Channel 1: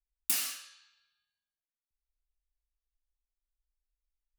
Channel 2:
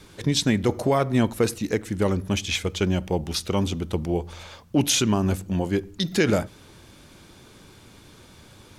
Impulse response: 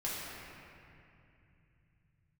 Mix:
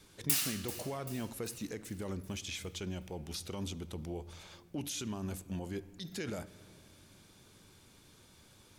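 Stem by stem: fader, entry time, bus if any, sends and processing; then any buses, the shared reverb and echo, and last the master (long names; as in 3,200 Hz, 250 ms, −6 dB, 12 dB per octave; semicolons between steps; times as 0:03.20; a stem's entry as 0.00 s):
−1.5 dB, 0.00 s, send −16.5 dB, echo send −13.5 dB, no processing
−13.5 dB, 0.00 s, send −20.5 dB, no echo send, high-shelf EQ 4,400 Hz +7.5 dB; brickwall limiter −17.5 dBFS, peak gain reduction 12 dB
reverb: on, RT60 2.6 s, pre-delay 4 ms
echo: repeating echo 388 ms, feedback 55%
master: no processing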